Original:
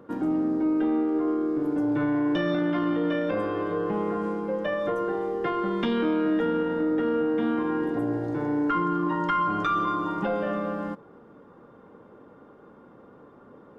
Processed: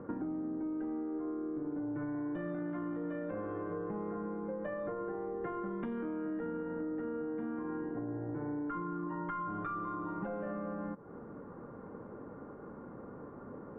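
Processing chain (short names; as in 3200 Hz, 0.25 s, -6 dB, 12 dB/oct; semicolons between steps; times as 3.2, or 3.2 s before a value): LPF 1900 Hz 24 dB/oct; low shelf 210 Hz +6.5 dB; compressor, threshold -38 dBFS, peak gain reduction 17 dB; gain +1 dB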